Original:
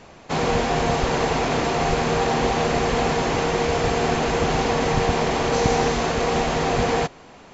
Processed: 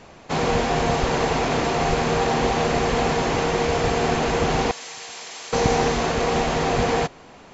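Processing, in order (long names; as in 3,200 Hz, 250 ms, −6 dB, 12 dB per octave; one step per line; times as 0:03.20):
0:04.71–0:05.53: first difference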